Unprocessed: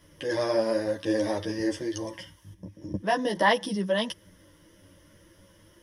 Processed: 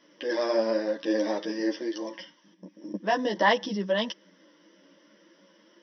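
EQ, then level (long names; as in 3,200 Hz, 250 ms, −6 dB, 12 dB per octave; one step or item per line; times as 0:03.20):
linear-phase brick-wall band-pass 180–6,100 Hz
0.0 dB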